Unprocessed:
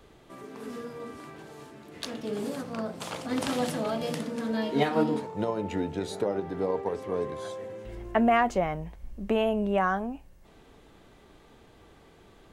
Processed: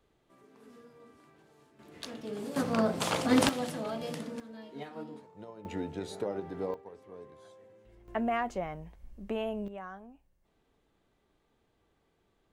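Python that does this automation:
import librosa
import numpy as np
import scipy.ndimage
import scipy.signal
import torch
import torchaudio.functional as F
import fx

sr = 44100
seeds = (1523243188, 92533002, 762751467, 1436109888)

y = fx.gain(x, sr, db=fx.steps((0.0, -16.0), (1.79, -6.0), (2.56, 6.0), (3.49, -6.0), (4.4, -18.0), (5.65, -6.0), (6.74, -18.0), (8.08, -8.5), (9.68, -18.0)))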